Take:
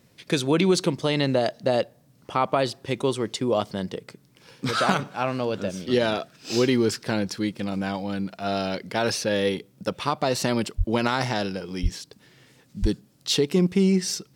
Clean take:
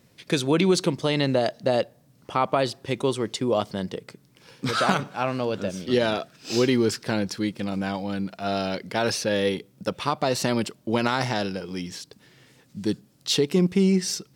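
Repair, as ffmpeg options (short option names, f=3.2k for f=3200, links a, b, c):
-filter_complex "[0:a]asplit=3[a][b][c];[a]afade=t=out:st=10.77:d=0.02[d];[b]highpass=f=140:w=0.5412,highpass=f=140:w=1.3066,afade=t=in:st=10.77:d=0.02,afade=t=out:st=10.89:d=0.02[e];[c]afade=t=in:st=10.89:d=0.02[f];[d][e][f]amix=inputs=3:normalize=0,asplit=3[g][h][i];[g]afade=t=out:st=11.82:d=0.02[j];[h]highpass=f=140:w=0.5412,highpass=f=140:w=1.3066,afade=t=in:st=11.82:d=0.02,afade=t=out:st=11.94:d=0.02[k];[i]afade=t=in:st=11.94:d=0.02[l];[j][k][l]amix=inputs=3:normalize=0,asplit=3[m][n][o];[m]afade=t=out:st=12.81:d=0.02[p];[n]highpass=f=140:w=0.5412,highpass=f=140:w=1.3066,afade=t=in:st=12.81:d=0.02,afade=t=out:st=12.93:d=0.02[q];[o]afade=t=in:st=12.93:d=0.02[r];[p][q][r]amix=inputs=3:normalize=0"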